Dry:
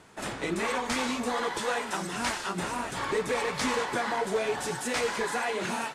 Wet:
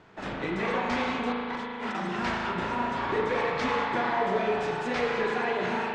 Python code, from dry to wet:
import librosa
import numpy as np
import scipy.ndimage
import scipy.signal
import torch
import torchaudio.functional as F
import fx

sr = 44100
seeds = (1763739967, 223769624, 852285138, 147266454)

y = fx.over_compress(x, sr, threshold_db=-37.0, ratio=-0.5, at=(1.32, 1.95))
y = fx.air_absorb(y, sr, metres=190.0)
y = fx.rev_spring(y, sr, rt60_s=2.5, pass_ms=(37,), chirp_ms=20, drr_db=-0.5)